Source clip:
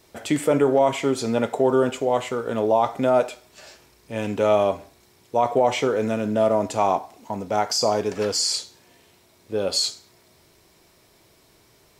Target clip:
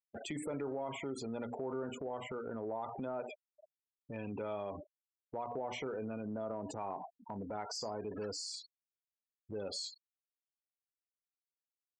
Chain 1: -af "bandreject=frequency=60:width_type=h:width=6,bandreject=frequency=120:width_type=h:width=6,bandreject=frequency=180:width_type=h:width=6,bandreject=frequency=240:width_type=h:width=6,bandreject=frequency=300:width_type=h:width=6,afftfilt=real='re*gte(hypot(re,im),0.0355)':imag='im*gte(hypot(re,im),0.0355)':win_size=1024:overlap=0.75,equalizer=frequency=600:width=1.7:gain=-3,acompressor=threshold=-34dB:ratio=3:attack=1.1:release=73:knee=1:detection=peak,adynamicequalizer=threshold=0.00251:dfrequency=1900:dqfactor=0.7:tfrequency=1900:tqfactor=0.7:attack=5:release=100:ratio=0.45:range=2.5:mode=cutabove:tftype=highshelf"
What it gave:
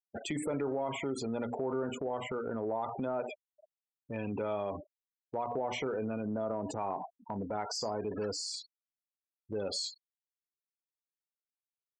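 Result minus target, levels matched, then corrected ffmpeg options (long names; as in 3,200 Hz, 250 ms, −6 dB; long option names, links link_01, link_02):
downward compressor: peak gain reduction −5.5 dB
-af "bandreject=frequency=60:width_type=h:width=6,bandreject=frequency=120:width_type=h:width=6,bandreject=frequency=180:width_type=h:width=6,bandreject=frequency=240:width_type=h:width=6,bandreject=frequency=300:width_type=h:width=6,afftfilt=real='re*gte(hypot(re,im),0.0355)':imag='im*gte(hypot(re,im),0.0355)':win_size=1024:overlap=0.75,equalizer=frequency=600:width=1.7:gain=-3,acompressor=threshold=-42dB:ratio=3:attack=1.1:release=73:knee=1:detection=peak,adynamicequalizer=threshold=0.00251:dfrequency=1900:dqfactor=0.7:tfrequency=1900:tqfactor=0.7:attack=5:release=100:ratio=0.45:range=2.5:mode=cutabove:tftype=highshelf"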